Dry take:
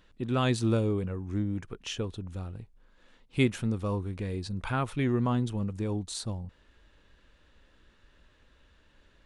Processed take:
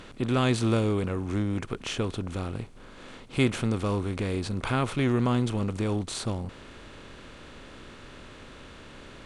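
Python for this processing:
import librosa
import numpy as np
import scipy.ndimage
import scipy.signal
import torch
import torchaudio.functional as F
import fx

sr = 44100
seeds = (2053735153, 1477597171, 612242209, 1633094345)

y = fx.bin_compress(x, sr, power=0.6)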